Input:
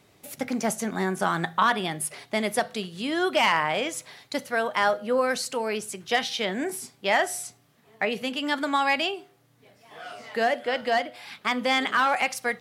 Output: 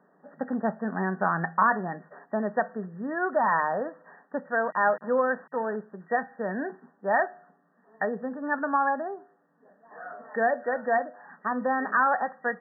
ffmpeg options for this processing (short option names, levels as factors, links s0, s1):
-filter_complex "[0:a]asettb=1/sr,asplit=3[s0][s1][s2];[s0]atrim=end=4.654[s3];[s1]atrim=start=4.65:end=5.76,asetpts=PTS-STARTPTS,afade=t=in:d=0.004:c=qsin,afade=t=out:st=1.106:d=0.004:c=qsin,aeval=exprs='val(0)*gte(abs(val(0)),0.0211)':c=same[s4];[s2]atrim=start=5.756[s5];[s3][s4]acrossfade=d=0.004:c1=hsin:c2=qsin[s6];[s6][s5]acrossfade=d=0.004:c1=qsin:c2=hsin,afftfilt=real='re*between(b*sr/4096,160,1900)':imag='im*between(b*sr/4096,160,1900)':win_size=4096:overlap=0.75,equalizer=f=340:t=o:w=0.37:g=-8"